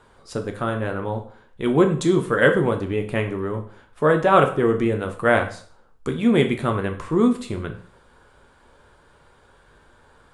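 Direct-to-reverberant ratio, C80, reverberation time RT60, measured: 4.5 dB, 15.0 dB, 0.50 s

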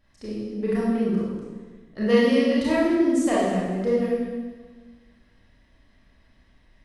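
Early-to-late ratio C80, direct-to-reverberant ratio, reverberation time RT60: 1.0 dB, −8.5 dB, 1.4 s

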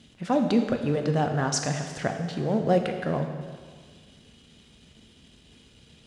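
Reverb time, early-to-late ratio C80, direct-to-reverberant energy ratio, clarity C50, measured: 1.7 s, 7.5 dB, 5.0 dB, 6.5 dB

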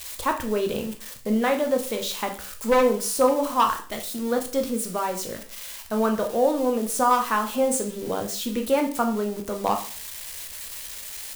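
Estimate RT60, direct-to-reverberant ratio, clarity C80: 0.40 s, 4.0 dB, 15.5 dB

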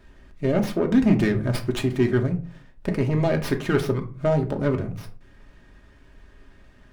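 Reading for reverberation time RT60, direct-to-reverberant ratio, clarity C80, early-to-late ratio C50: 0.40 s, 3.0 dB, 18.5 dB, 13.5 dB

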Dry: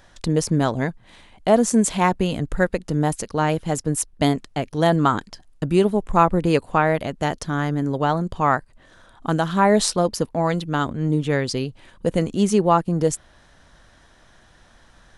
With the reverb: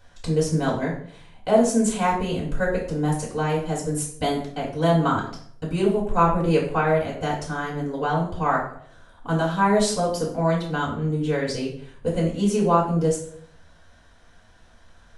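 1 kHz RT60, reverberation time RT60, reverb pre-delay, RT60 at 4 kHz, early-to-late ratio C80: 0.55 s, 0.60 s, 4 ms, 0.45 s, 9.5 dB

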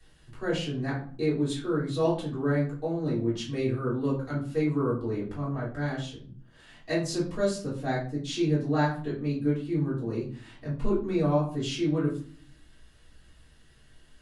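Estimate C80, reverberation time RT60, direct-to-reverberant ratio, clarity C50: 11.0 dB, 0.45 s, −8.5 dB, 6.5 dB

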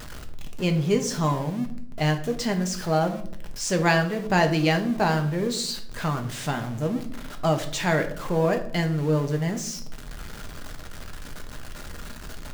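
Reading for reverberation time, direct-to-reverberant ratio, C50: 0.60 s, 4.5 dB, 11.5 dB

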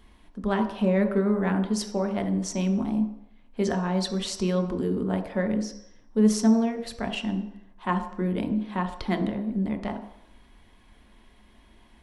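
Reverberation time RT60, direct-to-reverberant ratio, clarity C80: 0.75 s, 4.5 dB, 11.5 dB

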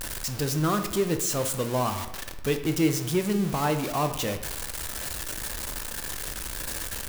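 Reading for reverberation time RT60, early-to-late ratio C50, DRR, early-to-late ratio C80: 1.0 s, 10.0 dB, 7.0 dB, 12.0 dB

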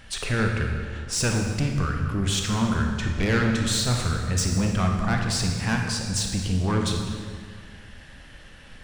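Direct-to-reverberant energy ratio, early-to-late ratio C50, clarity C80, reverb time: 1.5 dB, 3.0 dB, 4.5 dB, 2.0 s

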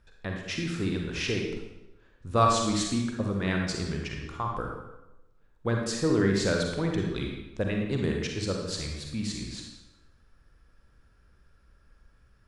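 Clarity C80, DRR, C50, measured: 5.0 dB, 0.5 dB, 2.0 dB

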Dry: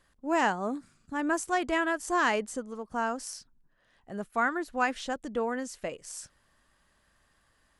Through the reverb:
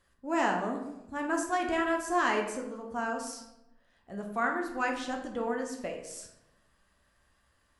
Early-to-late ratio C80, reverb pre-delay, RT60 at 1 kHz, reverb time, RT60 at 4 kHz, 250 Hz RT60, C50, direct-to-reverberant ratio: 9.0 dB, 6 ms, 0.85 s, 0.90 s, 0.55 s, 1.2 s, 6.0 dB, 1.0 dB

